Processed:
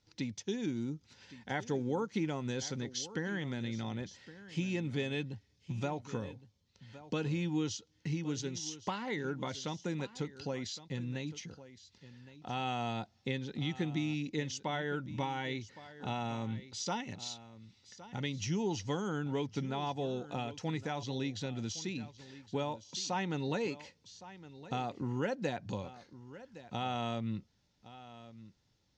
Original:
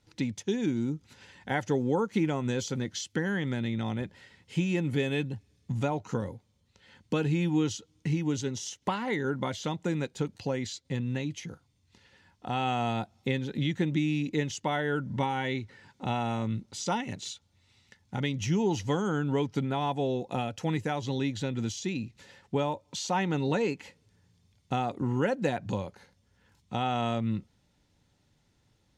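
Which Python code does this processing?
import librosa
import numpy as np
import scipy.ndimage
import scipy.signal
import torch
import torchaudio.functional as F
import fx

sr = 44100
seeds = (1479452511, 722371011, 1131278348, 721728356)

p1 = fx.lowpass_res(x, sr, hz=5500.0, q=2.1)
p2 = p1 + fx.echo_single(p1, sr, ms=1114, db=-16.0, dry=0)
y = p2 * 10.0 ** (-7.0 / 20.0)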